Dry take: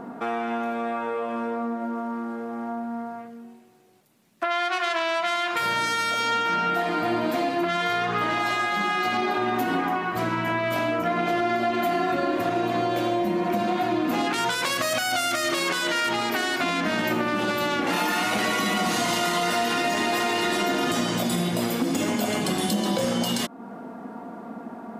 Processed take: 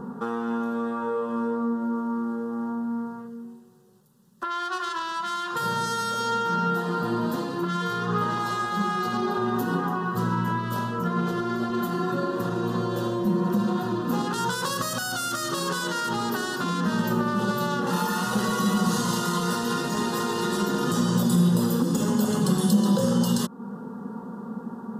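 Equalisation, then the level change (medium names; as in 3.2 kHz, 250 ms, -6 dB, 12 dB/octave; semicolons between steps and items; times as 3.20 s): peaking EQ 86 Hz +13.5 dB 2.6 oct; static phaser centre 450 Hz, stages 8; 0.0 dB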